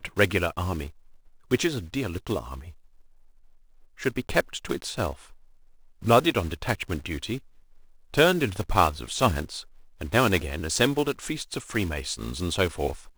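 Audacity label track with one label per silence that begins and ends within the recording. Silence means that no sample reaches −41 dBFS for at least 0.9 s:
2.710000	3.980000	silence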